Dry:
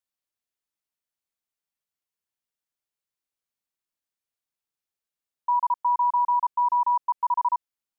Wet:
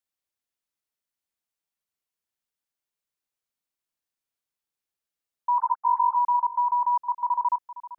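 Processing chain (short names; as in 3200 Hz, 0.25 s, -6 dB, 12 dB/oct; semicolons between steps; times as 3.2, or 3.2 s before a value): 5.58–6.16 sine-wave speech; echo 0.461 s -16 dB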